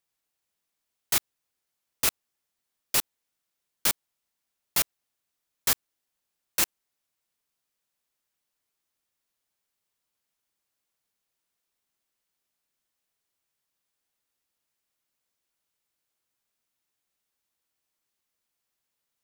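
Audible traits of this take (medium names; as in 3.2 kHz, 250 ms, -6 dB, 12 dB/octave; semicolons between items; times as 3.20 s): noise floor -83 dBFS; spectral tilt 0.0 dB/octave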